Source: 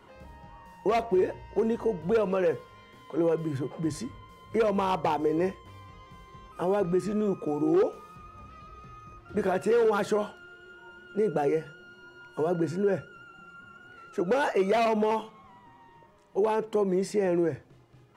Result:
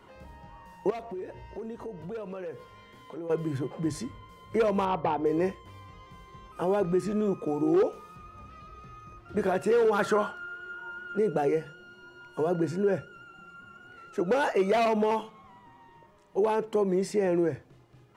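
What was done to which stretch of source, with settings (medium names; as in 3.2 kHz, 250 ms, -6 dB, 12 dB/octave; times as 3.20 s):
0.90–3.30 s: compression 3:1, threshold -39 dBFS
4.85–5.26 s: distance through air 270 m
9.99–11.18 s: peaking EQ 1.3 kHz +11.5 dB 0.8 oct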